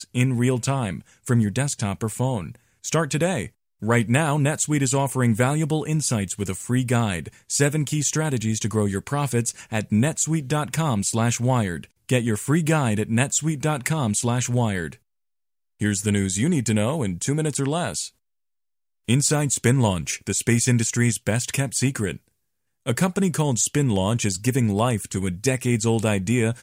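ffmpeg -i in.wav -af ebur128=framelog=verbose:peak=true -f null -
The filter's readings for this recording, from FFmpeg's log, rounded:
Integrated loudness:
  I:         -22.7 LUFS
  Threshold: -32.9 LUFS
Loudness range:
  LRA:         2.3 LU
  Threshold: -43.1 LUFS
  LRA low:   -24.3 LUFS
  LRA high:  -22.0 LUFS
True peak:
  Peak:       -3.9 dBFS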